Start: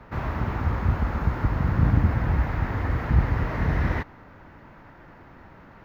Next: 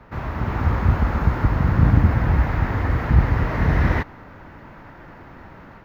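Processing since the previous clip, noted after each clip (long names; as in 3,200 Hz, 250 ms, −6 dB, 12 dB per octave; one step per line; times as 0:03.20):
automatic gain control gain up to 6 dB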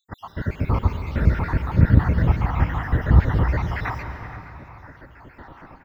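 time-frequency cells dropped at random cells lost 63%
slap from a distant wall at 81 metres, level −14 dB
convolution reverb RT60 3.2 s, pre-delay 108 ms, DRR 7.5 dB
level +1.5 dB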